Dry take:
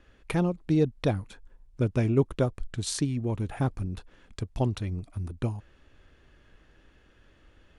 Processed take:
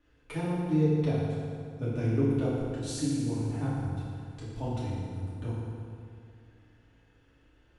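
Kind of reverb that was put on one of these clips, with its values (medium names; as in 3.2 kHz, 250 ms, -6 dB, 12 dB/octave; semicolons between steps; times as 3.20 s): FDN reverb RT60 2.4 s, low-frequency decay 1×, high-frequency decay 0.7×, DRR -10 dB; trim -14.5 dB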